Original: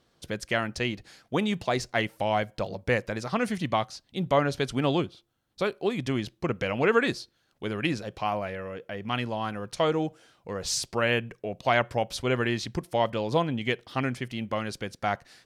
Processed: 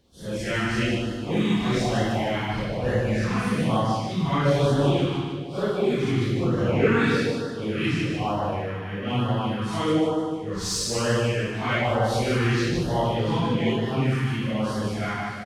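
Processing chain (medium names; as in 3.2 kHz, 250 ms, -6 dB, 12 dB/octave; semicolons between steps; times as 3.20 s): phase randomisation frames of 200 ms; bass shelf 200 Hz +7 dB; feedback delay 151 ms, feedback 50%, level -5 dB; in parallel at -11.5 dB: saturation -30.5 dBFS, distortion -6 dB; on the sum: reverberation RT60 1.3 s, pre-delay 50 ms, DRR 5 dB; LFO notch sine 1.1 Hz 530–2400 Hz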